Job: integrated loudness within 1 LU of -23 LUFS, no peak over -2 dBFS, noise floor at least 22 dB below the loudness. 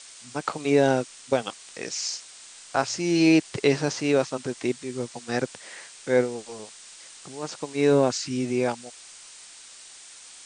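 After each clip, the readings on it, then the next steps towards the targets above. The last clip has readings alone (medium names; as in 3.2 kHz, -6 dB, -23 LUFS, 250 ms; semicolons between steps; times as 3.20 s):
noise floor -47 dBFS; noise floor target -48 dBFS; loudness -25.5 LUFS; peak level -7.5 dBFS; loudness target -23.0 LUFS
-> noise print and reduce 6 dB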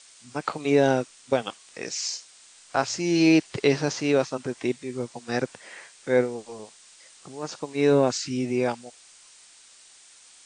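noise floor -53 dBFS; loudness -25.5 LUFS; peak level -7.5 dBFS; loudness target -23.0 LUFS
-> trim +2.5 dB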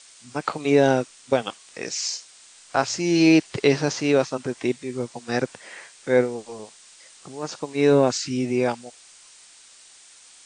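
loudness -23.0 LUFS; peak level -5.0 dBFS; noise floor -50 dBFS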